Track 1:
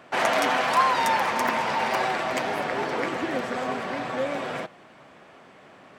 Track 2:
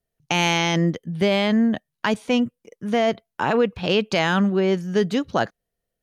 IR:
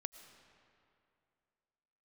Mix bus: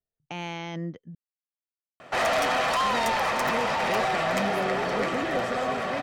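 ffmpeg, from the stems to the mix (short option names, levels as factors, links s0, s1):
-filter_complex "[0:a]asoftclip=type=tanh:threshold=0.0668,aecho=1:1:1.6:0.31,adelay=2000,volume=1.33[s0];[1:a]lowpass=f=2200:p=1,volume=0.224,asplit=3[s1][s2][s3];[s1]atrim=end=1.15,asetpts=PTS-STARTPTS,afade=t=out:st=1.146:d=0.004:c=hsin[s4];[s2]atrim=start=1.15:end=2.8,asetpts=PTS-STARTPTS,volume=0[s5];[s3]atrim=start=2.8,asetpts=PTS-STARTPTS,afade=t=in:d=0.004:c=hsin[s6];[s4][s5][s6]concat=n=3:v=0:a=1[s7];[s0][s7]amix=inputs=2:normalize=0"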